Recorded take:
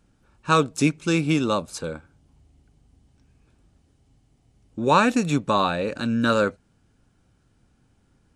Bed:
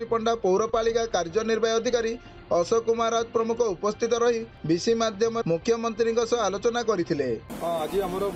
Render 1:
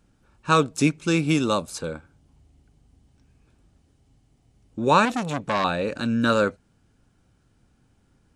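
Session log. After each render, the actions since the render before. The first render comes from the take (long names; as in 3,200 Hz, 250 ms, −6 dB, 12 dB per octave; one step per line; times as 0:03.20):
0:01.26–0:01.72: high-shelf EQ 9,100 Hz → 5,300 Hz +8.5 dB
0:05.05–0:05.64: saturating transformer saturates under 1,600 Hz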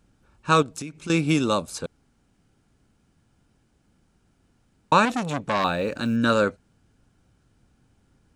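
0:00.62–0:01.10: downward compressor 12 to 1, threshold −30 dBFS
0:01.86–0:04.92: fill with room tone
0:05.61–0:06.16: log-companded quantiser 8 bits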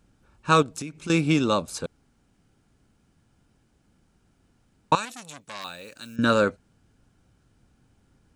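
0:01.28–0:01.68: low-pass filter 6,700 Hz
0:04.95–0:06.19: first-order pre-emphasis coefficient 0.9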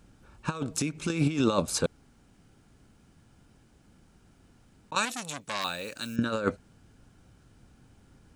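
compressor whose output falls as the input rises −25 dBFS, ratio −0.5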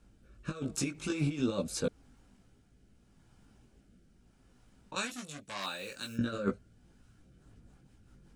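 multi-voice chorus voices 6, 1.1 Hz, delay 18 ms, depth 3 ms
rotating-speaker cabinet horn 0.8 Hz, later 5.5 Hz, at 0:06.92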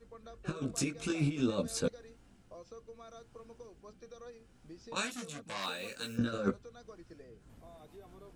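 mix in bed −28 dB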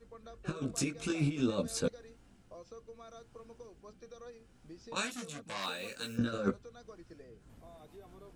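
no processing that can be heard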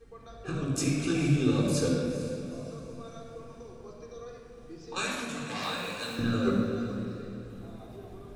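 feedback delay with all-pass diffusion 454 ms, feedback 41%, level −13 dB
rectangular room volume 3,300 cubic metres, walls mixed, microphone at 3.8 metres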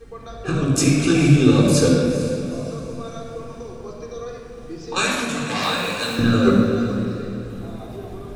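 level +11.5 dB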